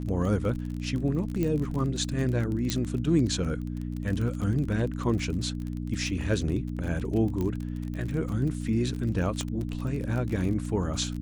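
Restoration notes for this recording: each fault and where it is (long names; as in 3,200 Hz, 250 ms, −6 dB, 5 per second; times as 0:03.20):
surface crackle 28 per second −32 dBFS
mains hum 60 Hz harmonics 5 −33 dBFS
0:01.43: click −17 dBFS
0:02.70: click −12 dBFS
0:07.41: click −19 dBFS
0:09.41: click −17 dBFS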